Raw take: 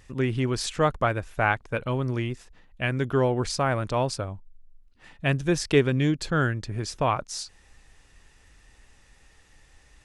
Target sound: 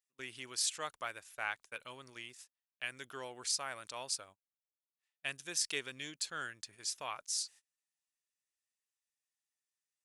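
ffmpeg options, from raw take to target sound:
-af "atempo=1,aderivative,agate=range=0.0398:threshold=0.00178:ratio=16:detection=peak"

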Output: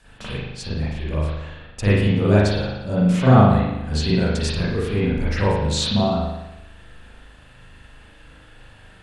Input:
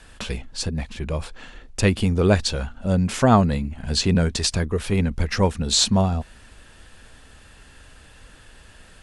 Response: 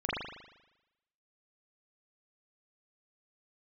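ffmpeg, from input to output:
-filter_complex "[0:a]equalizer=f=130:w=4.7:g=6[s0];[1:a]atrim=start_sample=2205[s1];[s0][s1]afir=irnorm=-1:irlink=0,volume=0.447"

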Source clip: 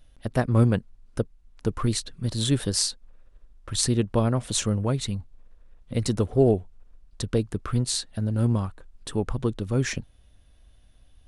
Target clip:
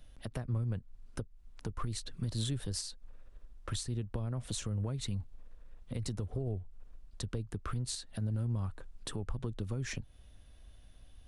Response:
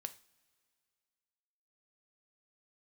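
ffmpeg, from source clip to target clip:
-filter_complex "[0:a]acrossover=split=110[s0][s1];[s1]acompressor=threshold=0.0251:ratio=8[s2];[s0][s2]amix=inputs=2:normalize=0,alimiter=level_in=1.33:limit=0.0631:level=0:latency=1:release=215,volume=0.75"

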